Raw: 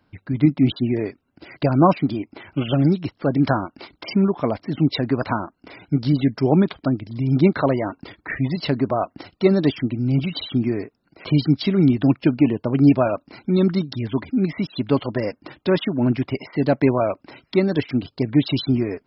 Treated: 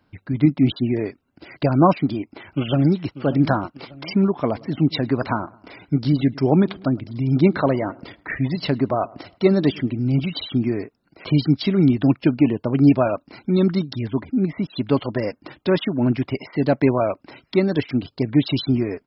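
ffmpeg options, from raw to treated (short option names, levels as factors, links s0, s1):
-filter_complex "[0:a]asplit=2[s0][s1];[s1]afade=t=in:st=2.14:d=0.01,afade=t=out:st=3.25:d=0.01,aecho=0:1:590|1180|1770:0.199526|0.0698342|0.024442[s2];[s0][s2]amix=inputs=2:normalize=0,asettb=1/sr,asplit=3[s3][s4][s5];[s3]atrim=end=4.354[s6];[s4]atrim=start=4.35:end=10.23,asetpts=PTS-STARTPTS,afade=t=in:d=0.004:c=qsin,afade=t=out:st=5.876:d=0.004:c=qsin,asplit=2[s7][s8];[s8]adelay=108,lowpass=f=2000:p=1,volume=0.075,asplit=2[s9][s10];[s10]adelay=108,lowpass=f=2000:p=1,volume=0.51,asplit=2[s11][s12];[s12]adelay=108,lowpass=f=2000:p=1,volume=0.51[s13];[s7][s9][s11][s13]amix=inputs=4:normalize=0,atrim=end_sample=259308[s14];[s5]atrim=start=10.226[s15];[s6][s14]acrossfade=d=0.004:c1=hsin:c2=qsin[s16];[s16][s15]acrossfade=d=0.004:c1=qsin:c2=hsin,asettb=1/sr,asplit=3[s17][s18][s19];[s17]atrim=end=14.084[s20];[s18]atrim=start=14.08:end=14.7,asetpts=PTS-STARTPTS,afade=t=in:d=0.004:c=qsin,afade=t=out:st=0.616:d=0.004:c=qsin,lowpass=f=1400:p=1[s21];[s19]atrim=start=14.696[s22];[s20][s21]acrossfade=d=0.004:c1=hsin:c2=qsin[s23];[s23][s22]acrossfade=d=0.004:c1=qsin:c2=hsin"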